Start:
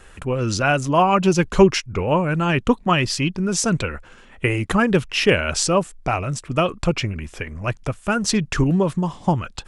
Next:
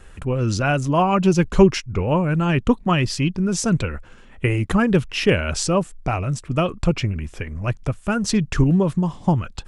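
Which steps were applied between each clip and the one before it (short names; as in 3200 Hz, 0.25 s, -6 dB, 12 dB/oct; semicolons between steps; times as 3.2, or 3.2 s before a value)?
low shelf 290 Hz +7.5 dB; gain -3.5 dB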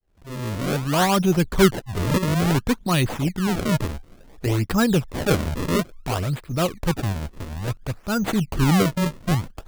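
opening faded in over 0.94 s; decimation with a swept rate 33×, swing 160% 0.58 Hz; transient shaper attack -7 dB, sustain -3 dB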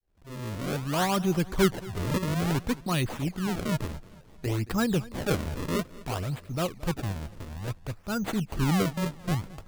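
warbling echo 0.222 s, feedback 47%, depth 90 cents, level -19.5 dB; gain -7 dB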